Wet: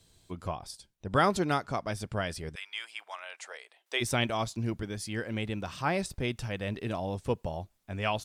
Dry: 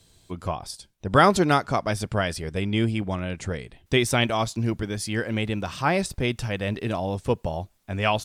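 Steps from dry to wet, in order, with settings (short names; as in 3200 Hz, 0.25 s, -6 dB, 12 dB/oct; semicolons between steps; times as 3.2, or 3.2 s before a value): 2.54–4 HPF 1200 Hz -> 490 Hz 24 dB/oct; vocal rider within 4 dB 2 s; gain -8.5 dB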